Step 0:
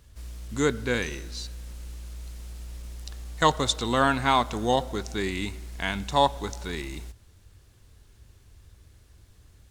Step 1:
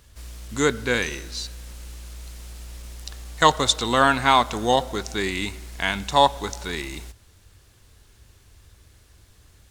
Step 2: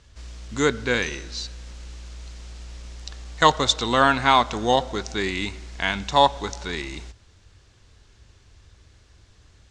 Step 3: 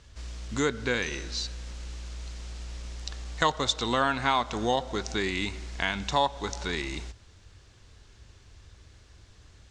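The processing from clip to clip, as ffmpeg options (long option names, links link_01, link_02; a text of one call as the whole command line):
ffmpeg -i in.wav -af "lowshelf=frequency=430:gain=-6,volume=6dB" out.wav
ffmpeg -i in.wav -af "lowpass=frequency=7000:width=0.5412,lowpass=frequency=7000:width=1.3066" out.wav
ffmpeg -i in.wav -af "acompressor=threshold=-27dB:ratio=2" out.wav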